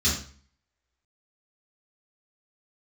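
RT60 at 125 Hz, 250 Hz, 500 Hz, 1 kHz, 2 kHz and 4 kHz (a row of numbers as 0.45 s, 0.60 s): 0.55 s, 0.55 s, 0.45 s, 0.45 s, 0.45 s, 0.40 s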